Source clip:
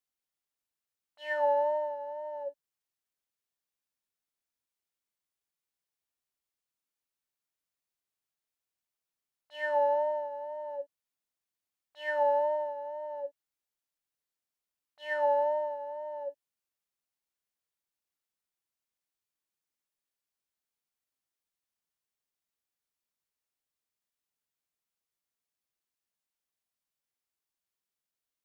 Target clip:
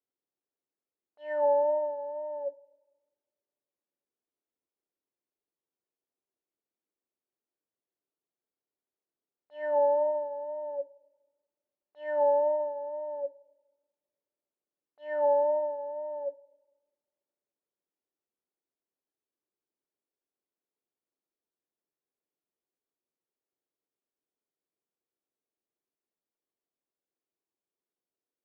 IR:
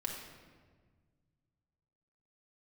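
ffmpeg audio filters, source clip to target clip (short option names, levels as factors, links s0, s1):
-filter_complex "[0:a]bandpass=f=370:t=q:w=1.7:csg=0,asplit=2[s0][s1];[1:a]atrim=start_sample=2205,asetrate=61740,aresample=44100[s2];[s1][s2]afir=irnorm=-1:irlink=0,volume=0.141[s3];[s0][s3]amix=inputs=2:normalize=0,volume=2.66"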